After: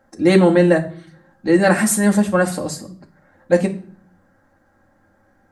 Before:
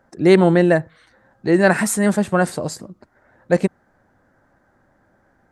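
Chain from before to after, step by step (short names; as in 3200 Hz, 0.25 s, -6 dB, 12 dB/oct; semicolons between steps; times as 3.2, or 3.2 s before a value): on a send: high shelf 5100 Hz +9 dB + reverb RT60 0.50 s, pre-delay 4 ms, DRR 0.5 dB; on the sum: gain -2 dB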